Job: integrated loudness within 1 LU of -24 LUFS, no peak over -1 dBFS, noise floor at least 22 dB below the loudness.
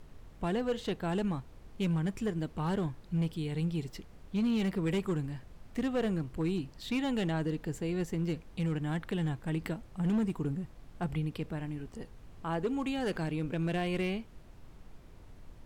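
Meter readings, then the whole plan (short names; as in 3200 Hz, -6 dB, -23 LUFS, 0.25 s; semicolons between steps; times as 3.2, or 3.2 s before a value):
clipped 1.5%; flat tops at -25.0 dBFS; noise floor -54 dBFS; noise floor target -56 dBFS; loudness -34.0 LUFS; peak -25.0 dBFS; loudness target -24.0 LUFS
-> clip repair -25 dBFS; noise print and reduce 6 dB; gain +10 dB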